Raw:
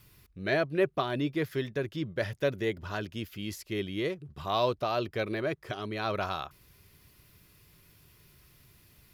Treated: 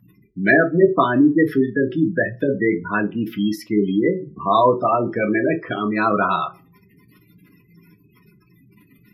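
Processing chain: spectral gate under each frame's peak -15 dB strong; bell 610 Hz -10 dB 0.9 oct; reverb RT60 0.30 s, pre-delay 3 ms, DRR 1 dB; gain +7 dB

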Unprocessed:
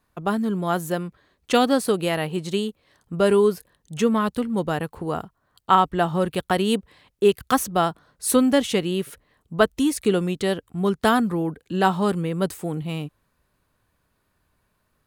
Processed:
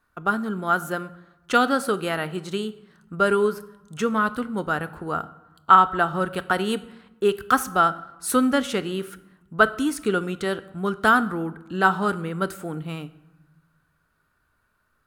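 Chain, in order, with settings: bell 1400 Hz +14.5 dB 0.42 oct; reverb RT60 1.1 s, pre-delay 3 ms, DRR 12.5 dB; gain -4 dB

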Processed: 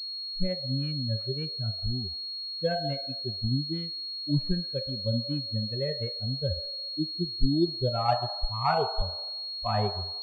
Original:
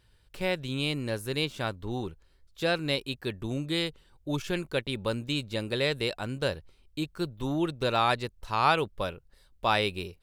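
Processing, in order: per-bin expansion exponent 3; tilt -4 dB/oct; on a send at -9 dB: resonant high-pass 700 Hz, resonance Q 4.9 + reverb RT60 1.1 s, pre-delay 8 ms; on the sum: pulse-width modulation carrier 4300 Hz

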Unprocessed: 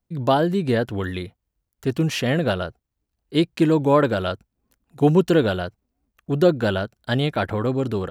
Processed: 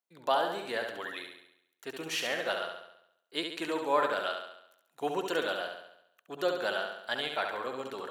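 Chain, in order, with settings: HPF 720 Hz 12 dB/oct; notch 5000 Hz, Q 19; on a send: flutter echo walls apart 11.8 m, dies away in 0.78 s; on the sum: gain -6 dB

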